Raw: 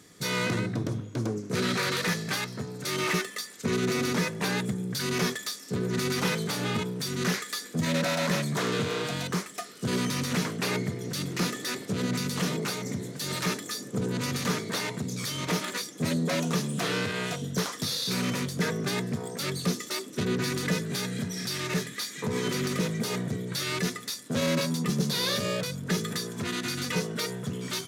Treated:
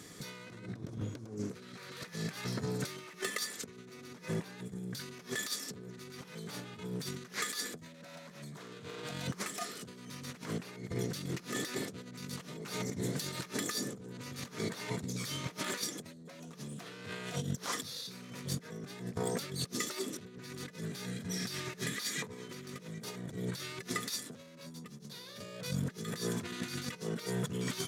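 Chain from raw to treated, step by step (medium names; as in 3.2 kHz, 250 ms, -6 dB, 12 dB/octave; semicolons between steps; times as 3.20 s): compressor with a negative ratio -36 dBFS, ratio -0.5; trim -3.5 dB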